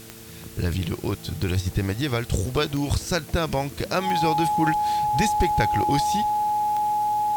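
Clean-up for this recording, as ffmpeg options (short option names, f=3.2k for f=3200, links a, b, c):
-af "adeclick=t=4,bandreject=f=112:t=h:w=4,bandreject=f=224:t=h:w=4,bandreject=f=336:t=h:w=4,bandreject=f=448:t=h:w=4,bandreject=f=840:w=30,afwtdn=0.0056"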